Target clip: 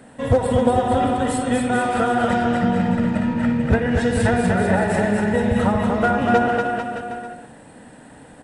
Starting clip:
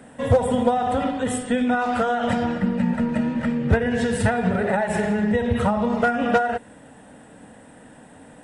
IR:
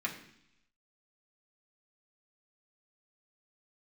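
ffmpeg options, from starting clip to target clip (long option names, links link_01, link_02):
-filter_complex "[0:a]aecho=1:1:240|444|617.4|764.8|890.1:0.631|0.398|0.251|0.158|0.1,asplit=2[link_01][link_02];[1:a]atrim=start_sample=2205,adelay=60[link_03];[link_02][link_03]afir=irnorm=-1:irlink=0,volume=-16dB[link_04];[link_01][link_04]amix=inputs=2:normalize=0,asplit=2[link_05][link_06];[link_06]asetrate=22050,aresample=44100,atempo=2,volume=-12dB[link_07];[link_05][link_07]amix=inputs=2:normalize=0"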